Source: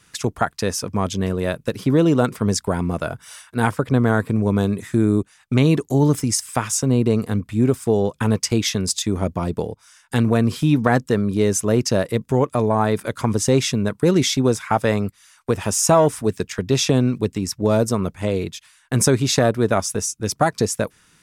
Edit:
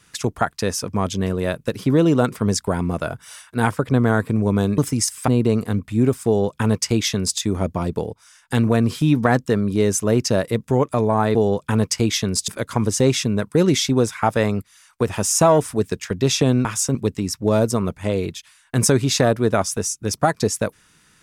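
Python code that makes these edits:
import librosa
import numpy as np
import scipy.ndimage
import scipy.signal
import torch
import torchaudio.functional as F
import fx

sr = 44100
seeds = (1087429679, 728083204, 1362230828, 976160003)

y = fx.edit(x, sr, fx.cut(start_s=4.78, length_s=1.31),
    fx.move(start_s=6.59, length_s=0.3, to_s=17.13),
    fx.duplicate(start_s=7.87, length_s=1.13, to_s=12.96), tone=tone)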